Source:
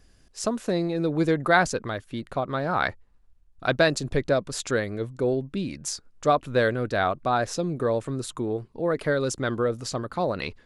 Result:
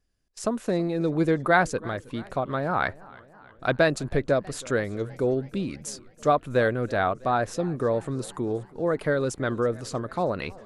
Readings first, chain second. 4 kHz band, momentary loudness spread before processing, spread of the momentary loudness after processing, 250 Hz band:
-5.5 dB, 9 LU, 9 LU, 0.0 dB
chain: gate -49 dBFS, range -18 dB; dynamic bell 5 kHz, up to -7 dB, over -46 dBFS, Q 0.88; modulated delay 322 ms, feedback 63%, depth 126 cents, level -22.5 dB

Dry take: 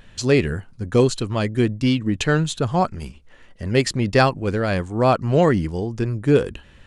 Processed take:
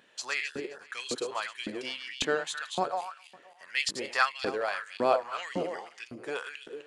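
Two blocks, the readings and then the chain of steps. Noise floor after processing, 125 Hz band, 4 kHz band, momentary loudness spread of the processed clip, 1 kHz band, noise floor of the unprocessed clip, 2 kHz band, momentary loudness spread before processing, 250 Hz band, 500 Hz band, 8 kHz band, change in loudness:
-57 dBFS, -31.0 dB, -5.0 dB, 12 LU, -7.5 dB, -49 dBFS, -5.0 dB, 9 LU, -20.5 dB, -12.5 dB, -6.5 dB, -12.0 dB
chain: backward echo that repeats 131 ms, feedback 51%, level -7 dB; peaking EQ 63 Hz -13.5 dB 0.99 oct; LFO high-pass saw up 1.8 Hz 250–3600 Hz; peaking EQ 280 Hz -6.5 dB 2.1 oct; trim -8.5 dB

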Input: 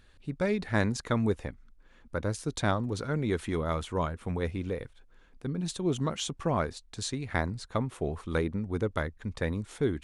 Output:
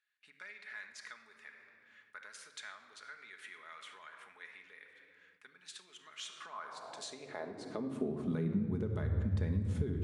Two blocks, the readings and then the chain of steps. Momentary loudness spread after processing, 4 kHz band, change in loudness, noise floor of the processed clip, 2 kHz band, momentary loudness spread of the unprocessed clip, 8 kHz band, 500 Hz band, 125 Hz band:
19 LU, -9.5 dB, -8.0 dB, -67 dBFS, -10.5 dB, 8 LU, -11.5 dB, -13.0 dB, -6.5 dB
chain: treble shelf 7.2 kHz -4.5 dB; peak limiter -22.5 dBFS, peak gain reduction 9.5 dB; simulated room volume 2700 m³, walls mixed, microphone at 1.4 m; compression 6:1, threshold -37 dBFS, peak gain reduction 13.5 dB; high-pass sweep 1.8 kHz -> 75 Hz, 6.22–9.20 s; bass shelf 400 Hz +8.5 dB; gate with hold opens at -50 dBFS; trim -4 dB

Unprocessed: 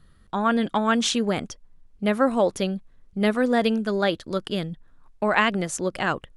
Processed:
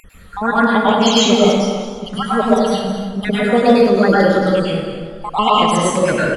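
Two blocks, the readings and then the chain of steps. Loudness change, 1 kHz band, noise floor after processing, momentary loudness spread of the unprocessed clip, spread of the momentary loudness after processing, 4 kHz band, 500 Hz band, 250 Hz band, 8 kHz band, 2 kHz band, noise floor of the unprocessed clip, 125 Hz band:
+9.0 dB, +10.5 dB, -39 dBFS, 10 LU, 12 LU, +11.0 dB, +10.5 dB, +9.0 dB, +8.0 dB, +6.5 dB, -56 dBFS, +10.0 dB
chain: random holes in the spectrogram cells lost 56%; in parallel at -2 dB: upward compressor, threshold -30 dBFS; on the sum: small resonant body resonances 470/3200 Hz, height 6 dB; wow and flutter 29 cents; on a send: delay 215 ms -11 dB; on the sum: plate-style reverb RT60 1.3 s, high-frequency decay 0.55×, pre-delay 90 ms, DRR -7 dB; hard clipper -2.5 dBFS, distortion -32 dB; modulated delay 292 ms, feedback 37%, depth 54 cents, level -16 dB

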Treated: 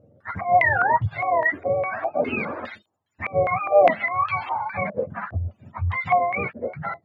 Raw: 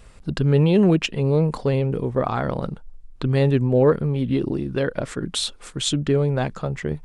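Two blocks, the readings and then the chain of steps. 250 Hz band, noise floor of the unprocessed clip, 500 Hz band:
-14.5 dB, -45 dBFS, -1.0 dB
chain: spectrum inverted on a logarithmic axis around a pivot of 550 Hz; step-sequenced low-pass 4.9 Hz 530–3200 Hz; trim -4 dB

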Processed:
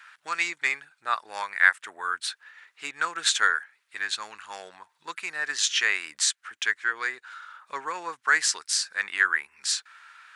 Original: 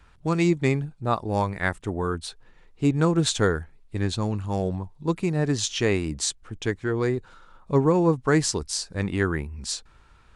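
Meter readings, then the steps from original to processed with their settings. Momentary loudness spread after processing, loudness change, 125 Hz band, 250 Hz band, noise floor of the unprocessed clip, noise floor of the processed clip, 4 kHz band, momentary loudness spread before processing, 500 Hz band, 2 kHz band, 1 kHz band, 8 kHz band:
18 LU, -0.5 dB, under -35 dB, -28.0 dB, -55 dBFS, -73 dBFS, +4.0 dB, 9 LU, -19.5 dB, +9.0 dB, 0.0 dB, +2.5 dB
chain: in parallel at +1.5 dB: compression, threshold -36 dBFS, peak gain reduction 19.5 dB; on the sum: resonant high-pass 1.6 kHz, resonance Q 2.6

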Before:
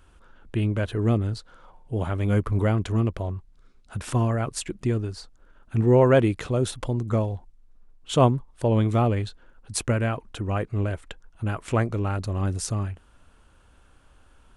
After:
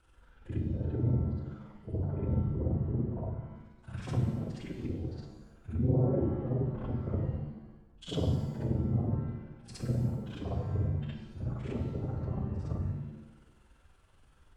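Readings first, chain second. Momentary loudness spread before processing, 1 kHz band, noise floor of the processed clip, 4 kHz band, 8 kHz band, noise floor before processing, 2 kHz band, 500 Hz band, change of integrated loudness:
12 LU, -18.0 dB, -62 dBFS, -13.0 dB, under -20 dB, -56 dBFS, under -15 dB, -13.5 dB, -9.0 dB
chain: phase randomisation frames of 50 ms; low-pass that closes with the level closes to 310 Hz, closed at -21 dBFS; AM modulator 21 Hz, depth 90%; on a send: reverse echo 64 ms -5.5 dB; on the sum: pitch-shifted reverb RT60 1 s, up +7 st, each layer -8 dB, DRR 2 dB; trim -6.5 dB

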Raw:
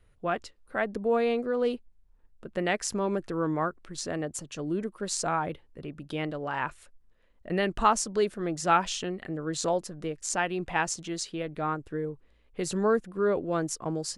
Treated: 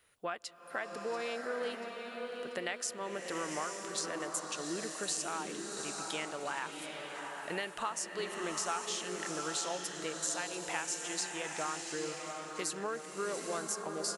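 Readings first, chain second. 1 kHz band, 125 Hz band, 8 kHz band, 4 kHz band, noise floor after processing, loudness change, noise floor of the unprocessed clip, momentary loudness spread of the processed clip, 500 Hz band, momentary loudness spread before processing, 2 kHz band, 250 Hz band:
-9.0 dB, -15.5 dB, -0.5 dB, -1.5 dB, -48 dBFS, -7.5 dB, -62 dBFS, 7 LU, -10.0 dB, 11 LU, -4.5 dB, -11.5 dB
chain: high-pass 1.3 kHz 6 dB/octave; treble shelf 7.5 kHz +7 dB; compression, threshold -40 dBFS, peak gain reduction 18.5 dB; feedback delay 687 ms, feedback 53%, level -13.5 dB; swelling reverb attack 880 ms, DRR 3 dB; trim +5 dB

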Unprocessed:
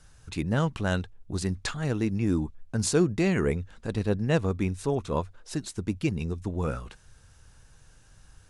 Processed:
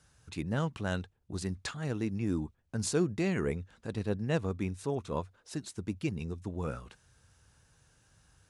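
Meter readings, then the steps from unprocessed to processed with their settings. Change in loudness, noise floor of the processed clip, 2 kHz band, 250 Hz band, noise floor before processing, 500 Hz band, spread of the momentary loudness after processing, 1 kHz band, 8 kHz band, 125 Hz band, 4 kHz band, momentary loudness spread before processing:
-6.0 dB, -70 dBFS, -6.0 dB, -6.0 dB, -56 dBFS, -6.0 dB, 10 LU, -6.0 dB, -6.0 dB, -6.5 dB, -6.0 dB, 10 LU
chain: high-pass 67 Hz; trim -6 dB

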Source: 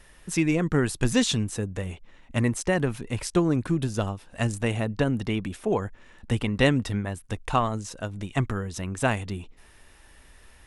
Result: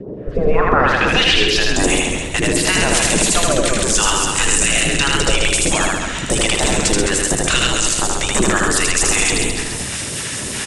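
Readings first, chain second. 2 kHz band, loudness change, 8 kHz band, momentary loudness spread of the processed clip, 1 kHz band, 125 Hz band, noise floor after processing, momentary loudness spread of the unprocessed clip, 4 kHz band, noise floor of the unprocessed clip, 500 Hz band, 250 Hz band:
+15.5 dB, +11.5 dB, +22.0 dB, 7 LU, +12.5 dB, +2.5 dB, -25 dBFS, 10 LU, +19.0 dB, -54 dBFS, +9.5 dB, +5.0 dB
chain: spectral gate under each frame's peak -15 dB weak; bass shelf 330 Hz +4.5 dB; in parallel at 0 dB: compression, threshold -46 dBFS, peak gain reduction 20.5 dB; on the sum: saturation -27.5 dBFS, distortion -10 dB; low-pass sweep 420 Hz -> 8.1 kHz, 0.07–1.84 s; phase shifter stages 2, 2.9 Hz, lowest notch 260–2800 Hz; rotary cabinet horn 0.9 Hz, later 5 Hz, at 4.91 s; on a send: loudspeakers at several distances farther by 27 m -3 dB, 98 m -11 dB; on the sum: loudness maximiser +30.5 dB; modulated delay 134 ms, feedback 31%, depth 61 cents, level -5 dB; trim -4.5 dB

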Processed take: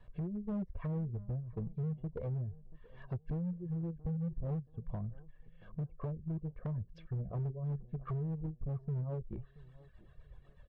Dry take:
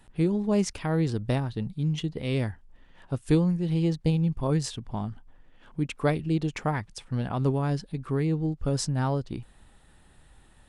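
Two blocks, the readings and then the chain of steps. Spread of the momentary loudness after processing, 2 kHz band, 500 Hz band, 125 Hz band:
9 LU, under -20 dB, -16.0 dB, -9.5 dB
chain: band-stop 400 Hz, Q 12; low-pass that closes with the level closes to 320 Hz, closed at -25.5 dBFS; reverb removal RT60 1.4 s; comb 1.8 ms, depth 85%; compression 6:1, threshold -30 dBFS, peak gain reduction 10.5 dB; rotary cabinet horn 0.9 Hz, later 8 Hz, at 6.27 s; hard clipper -32.5 dBFS, distortion -13 dB; tape spacing loss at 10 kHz 31 dB; on a send: tape echo 680 ms, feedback 42%, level -17.5 dB, low-pass 1.2 kHz

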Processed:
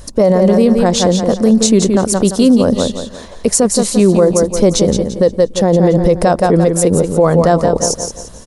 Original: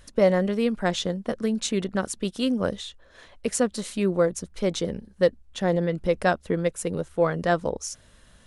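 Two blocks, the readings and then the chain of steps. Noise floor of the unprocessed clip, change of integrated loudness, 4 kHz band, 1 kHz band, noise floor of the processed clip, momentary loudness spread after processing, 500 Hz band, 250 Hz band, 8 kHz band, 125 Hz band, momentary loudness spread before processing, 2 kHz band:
-55 dBFS, +14.0 dB, +12.0 dB, +12.5 dB, -33 dBFS, 6 LU, +13.0 dB, +15.5 dB, +17.0 dB, +15.0 dB, 8 LU, +4.0 dB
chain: high-order bell 2.2 kHz -9.5 dB; on a send: feedback delay 172 ms, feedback 35%, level -8 dB; on the sum: loudness maximiser +19 dB; trim -1 dB

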